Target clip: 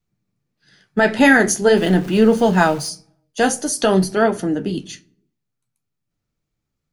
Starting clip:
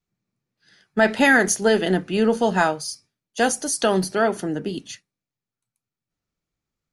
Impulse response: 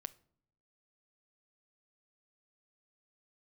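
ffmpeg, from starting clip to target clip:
-filter_complex "[0:a]asettb=1/sr,asplit=3[s0][s1][s2];[s0]atrim=end=1.774[s3];[s1]atrim=start=1.77:end=2.89,asetpts=PTS-STARTPTS,afade=t=in:d=0.004:c=qsin,afade=t=out:st=1.116:d=0.004:c=qsin,aeval=exprs='val(0)+0.5*0.0211*sgn(val(0))':c=same[s4];[s2]atrim=start=2.886[s5];[s3][s4]acrossfade=d=0.004:c1=hsin:c2=qsin[s6];[s6][s5]acrossfade=d=0.004:c1=qsin:c2=hsin,flanger=delay=8.8:depth=7:regen=-55:speed=0.47:shape=sinusoidal,asplit=2[s7][s8];[1:a]atrim=start_sample=2205,lowshelf=f=320:g=8[s9];[s8][s9]afir=irnorm=-1:irlink=0,volume=3.98[s10];[s7][s10]amix=inputs=2:normalize=0,volume=0.562"

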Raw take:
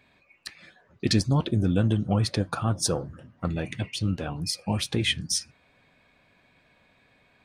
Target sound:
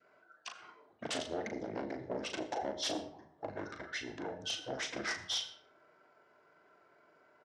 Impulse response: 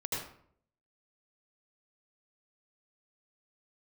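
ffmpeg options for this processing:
-filter_complex "[0:a]adynamicequalizer=threshold=0.00355:dfrequency=1600:dqfactor=2.3:tfrequency=1600:tqfactor=2.3:attack=5:release=100:ratio=0.375:range=2.5:mode=cutabove:tftype=bell,aeval=exprs='0.075*(abs(mod(val(0)/0.075+3,4)-2)-1)':c=same,asetrate=26990,aresample=44100,atempo=1.63392,asoftclip=type=tanh:threshold=0.0422,highpass=340,equalizer=f=650:t=q:w=4:g=7,equalizer=f=1100:t=q:w=4:g=-5,equalizer=f=2500:t=q:w=4:g=-8,lowpass=f=7600:w=0.5412,lowpass=f=7600:w=1.3066,asplit=2[s0][s1];[s1]adelay=38,volume=0.447[s2];[s0][s2]amix=inputs=2:normalize=0,asplit=2[s3][s4];[1:a]atrim=start_sample=2205[s5];[s4][s5]afir=irnorm=-1:irlink=0,volume=0.2[s6];[s3][s6]amix=inputs=2:normalize=0,volume=0.708"

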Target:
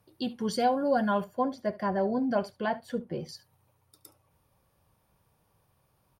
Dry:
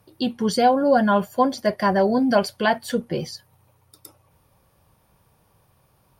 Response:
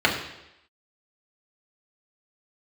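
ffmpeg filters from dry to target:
-filter_complex "[0:a]asettb=1/sr,asplit=3[s0][s1][s2];[s0]atrim=end=1.244[s3];[s1]atrim=start=1.24:end=3.29,asetpts=PTS-STARTPTS,afade=t=in:d=0.004:c=qsin,afade=t=out:st=2.046:d=0.004:c=qsin,highshelf=f=2400:g=-12[s4];[s2]atrim=start=3.286[s5];[s3][s4]acrossfade=d=0.004:c1=hsin:c2=qsin[s6];[s6][s5]acrossfade=d=0.004:c1=qsin:c2=hsin,aecho=1:1:71:0.106,volume=0.376"

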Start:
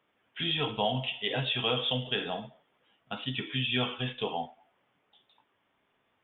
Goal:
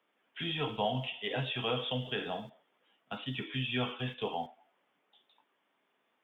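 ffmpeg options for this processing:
-filter_complex "[0:a]acrossover=split=3200[s0][s1];[s1]acompressor=threshold=0.00355:ratio=4:attack=1:release=60[s2];[s0][s2]amix=inputs=2:normalize=0,acrossover=split=170|330|1400[s3][s4][s5][s6];[s3]aeval=exprs='val(0)*gte(abs(val(0)),0.00178)':c=same[s7];[s7][s4][s5][s6]amix=inputs=4:normalize=0,volume=0.75"

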